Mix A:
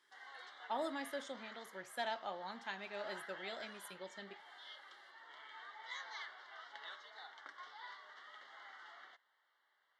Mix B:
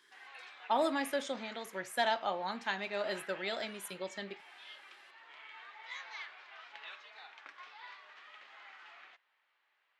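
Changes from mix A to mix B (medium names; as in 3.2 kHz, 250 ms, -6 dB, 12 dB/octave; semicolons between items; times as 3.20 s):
speech +9.0 dB; background: remove Butterworth band-stop 2.5 kHz, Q 2.6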